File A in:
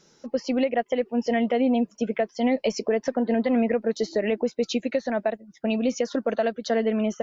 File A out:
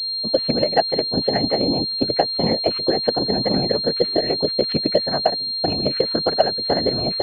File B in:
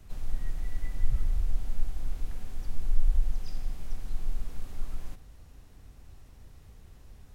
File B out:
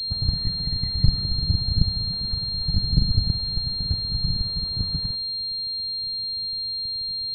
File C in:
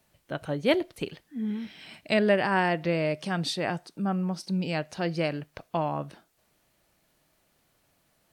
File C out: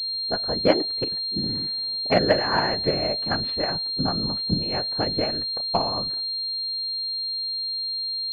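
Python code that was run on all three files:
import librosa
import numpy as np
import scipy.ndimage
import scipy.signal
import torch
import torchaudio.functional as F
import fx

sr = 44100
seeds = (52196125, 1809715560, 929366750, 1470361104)

y = fx.env_lowpass(x, sr, base_hz=490.0, full_db=-22.5)
y = fx.low_shelf(y, sr, hz=470.0, db=-6.0)
y = fx.whisperise(y, sr, seeds[0])
y = fx.transient(y, sr, attack_db=7, sustain_db=3)
y = fx.pwm(y, sr, carrier_hz=4200.0)
y = F.gain(torch.from_numpy(y), 2.5).numpy()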